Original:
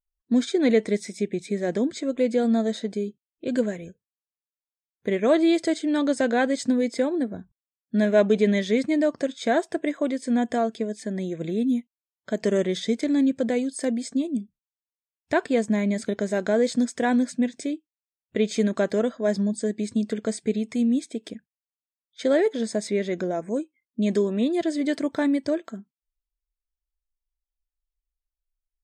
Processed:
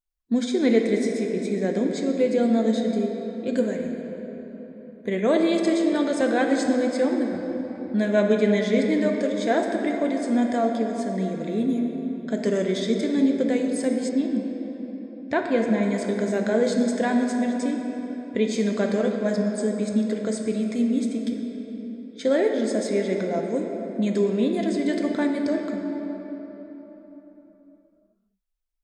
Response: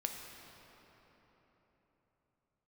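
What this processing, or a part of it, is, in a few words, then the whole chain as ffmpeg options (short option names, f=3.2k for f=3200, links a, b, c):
cathedral: -filter_complex "[1:a]atrim=start_sample=2205[a];[0:a][a]afir=irnorm=-1:irlink=0,asettb=1/sr,asplit=3[b][c][d];[b]atrim=end=14.094[e];[c]atrim=start=14.09:end=15.83,asetpts=PTS-STARTPTS,afade=t=in:d=0.004:c=qsin,afade=t=out:st=1.736:d=0.004:c=qsin,lowpass=4.9k[f];[d]atrim=start=15.826[g];[e][f]acrossfade=d=0.004:c1=hsin:c2=qsin[h];[h][g]acrossfade=d=0.004:c1=qsin:c2=hsin"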